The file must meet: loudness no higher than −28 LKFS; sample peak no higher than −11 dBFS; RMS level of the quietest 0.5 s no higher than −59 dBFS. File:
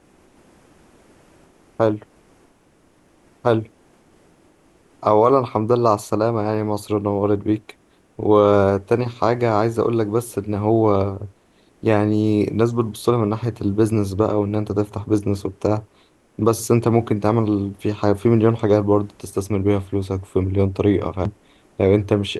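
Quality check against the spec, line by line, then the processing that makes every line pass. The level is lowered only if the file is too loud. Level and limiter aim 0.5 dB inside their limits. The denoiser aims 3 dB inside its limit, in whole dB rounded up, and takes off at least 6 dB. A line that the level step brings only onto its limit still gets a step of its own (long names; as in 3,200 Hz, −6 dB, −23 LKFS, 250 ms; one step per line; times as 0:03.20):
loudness −20.0 LKFS: out of spec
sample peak −2.5 dBFS: out of spec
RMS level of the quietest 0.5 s −57 dBFS: out of spec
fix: level −8.5 dB
brickwall limiter −11.5 dBFS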